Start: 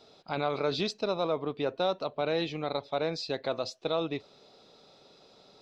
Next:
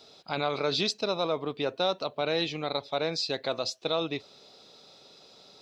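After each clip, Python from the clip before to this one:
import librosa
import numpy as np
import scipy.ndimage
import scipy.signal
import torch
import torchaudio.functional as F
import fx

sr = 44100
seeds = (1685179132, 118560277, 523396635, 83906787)

y = scipy.signal.sosfilt(scipy.signal.butter(2, 44.0, 'highpass', fs=sr, output='sos'), x)
y = fx.high_shelf(y, sr, hz=2600.0, db=9.0)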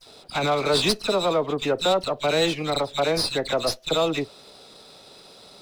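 y = fx.dispersion(x, sr, late='lows', ms=62.0, hz=2200.0)
y = fx.running_max(y, sr, window=3)
y = y * 10.0 ** (7.0 / 20.0)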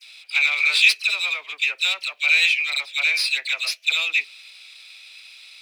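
y = fx.highpass_res(x, sr, hz=2400.0, q=9.1)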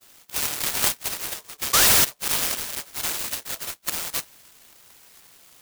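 y = fx.spec_paint(x, sr, seeds[0], shape='rise', start_s=1.73, length_s=0.32, low_hz=1100.0, high_hz=4700.0, level_db=-9.0)
y = fx.noise_mod_delay(y, sr, seeds[1], noise_hz=5500.0, depth_ms=0.17)
y = y * 10.0 ** (-7.0 / 20.0)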